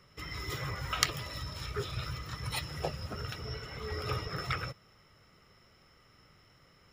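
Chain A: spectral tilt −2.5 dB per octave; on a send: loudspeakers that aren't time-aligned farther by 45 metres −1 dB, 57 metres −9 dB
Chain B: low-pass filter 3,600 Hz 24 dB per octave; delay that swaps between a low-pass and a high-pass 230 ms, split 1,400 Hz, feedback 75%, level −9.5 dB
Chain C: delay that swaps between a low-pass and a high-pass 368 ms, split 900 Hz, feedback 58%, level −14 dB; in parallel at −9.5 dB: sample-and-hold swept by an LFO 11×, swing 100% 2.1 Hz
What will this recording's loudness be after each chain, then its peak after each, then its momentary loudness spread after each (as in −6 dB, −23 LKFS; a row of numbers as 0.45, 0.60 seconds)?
−31.0, −38.0, −35.0 LKFS; −10.5, −10.5, −6.0 dBFS; 5, 18, 16 LU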